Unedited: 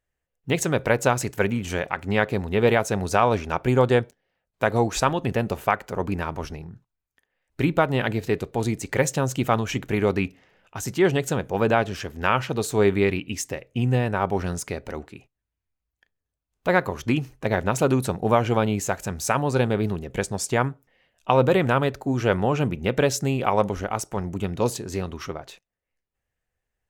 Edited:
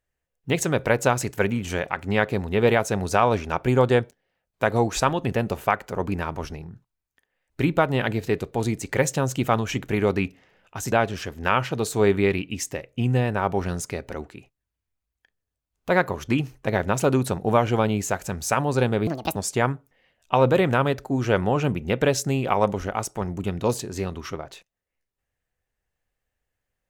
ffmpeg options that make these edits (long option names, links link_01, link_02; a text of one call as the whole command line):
ffmpeg -i in.wav -filter_complex "[0:a]asplit=4[link_01][link_02][link_03][link_04];[link_01]atrim=end=10.922[link_05];[link_02]atrim=start=11.698:end=19.854[link_06];[link_03]atrim=start=19.85:end=20.32,asetpts=PTS-STARTPTS,asetrate=71883,aresample=44100[link_07];[link_04]atrim=start=20.316[link_08];[link_05][link_06]acrossfade=duration=0.004:curve1=hsin:curve2=hsin[link_09];[link_09][link_07]acrossfade=duration=0.004:curve1=hsin:curve2=hsin[link_10];[link_10][link_08]acrossfade=duration=0.004:curve1=hsin:curve2=hsin" out.wav